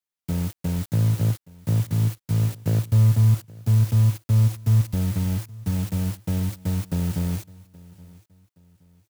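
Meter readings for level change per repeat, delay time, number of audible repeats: -9.5 dB, 0.822 s, 2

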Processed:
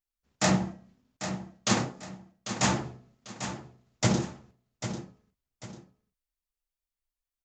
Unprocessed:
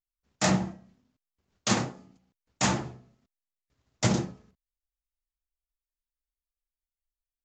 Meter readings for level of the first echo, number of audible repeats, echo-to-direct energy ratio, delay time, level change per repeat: -10.0 dB, 2, -9.5 dB, 0.795 s, -9.5 dB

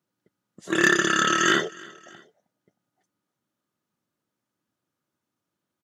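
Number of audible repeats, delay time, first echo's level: 2, 0.313 s, -23.0 dB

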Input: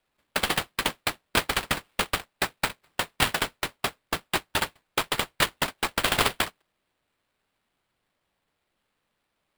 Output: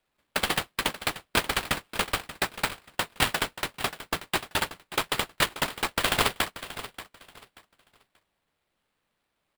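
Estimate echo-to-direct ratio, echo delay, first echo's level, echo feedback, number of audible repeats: -13.5 dB, 0.583 s, -14.0 dB, 24%, 2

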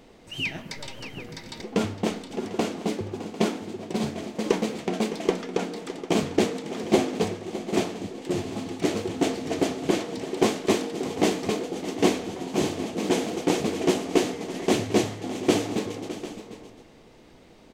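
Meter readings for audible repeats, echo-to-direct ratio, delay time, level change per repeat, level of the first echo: 2, -11.5 dB, 0.611 s, no steady repeat, -14.0 dB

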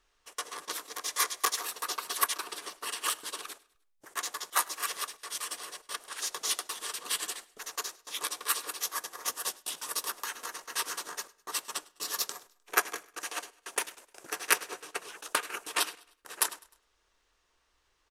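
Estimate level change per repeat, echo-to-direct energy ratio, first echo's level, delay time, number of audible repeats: -7.0 dB, -22.0 dB, -23.0 dB, 0.102 s, 2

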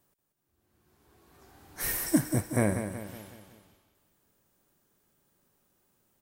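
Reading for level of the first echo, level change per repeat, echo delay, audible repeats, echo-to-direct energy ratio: -9.0 dB, -6.5 dB, 0.185 s, 5, -8.0 dB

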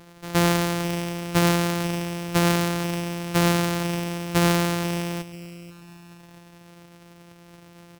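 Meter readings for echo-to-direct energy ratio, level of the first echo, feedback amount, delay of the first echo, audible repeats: -16.5 dB, -17.0 dB, 39%, 0.488 s, 3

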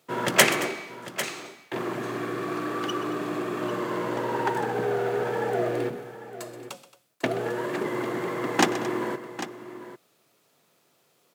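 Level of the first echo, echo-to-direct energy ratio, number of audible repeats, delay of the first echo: -15.0 dB, -10.0 dB, 3, 0.127 s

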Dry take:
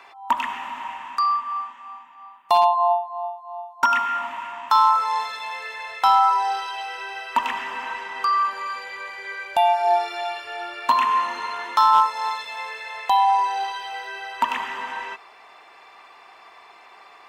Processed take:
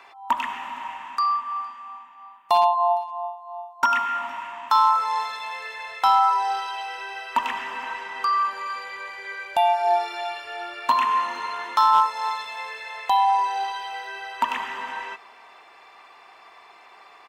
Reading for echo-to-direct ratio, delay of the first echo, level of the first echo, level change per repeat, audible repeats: -24.0 dB, 0.461 s, -24.0 dB, no steady repeat, 1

